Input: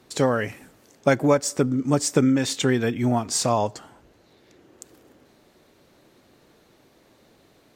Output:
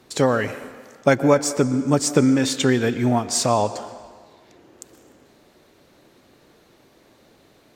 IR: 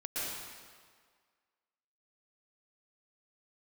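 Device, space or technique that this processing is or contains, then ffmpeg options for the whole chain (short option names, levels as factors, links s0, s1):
filtered reverb send: -filter_complex "[0:a]asplit=2[s0][s1];[s1]highpass=220,lowpass=8100[s2];[1:a]atrim=start_sample=2205[s3];[s2][s3]afir=irnorm=-1:irlink=0,volume=0.158[s4];[s0][s4]amix=inputs=2:normalize=0,volume=1.26"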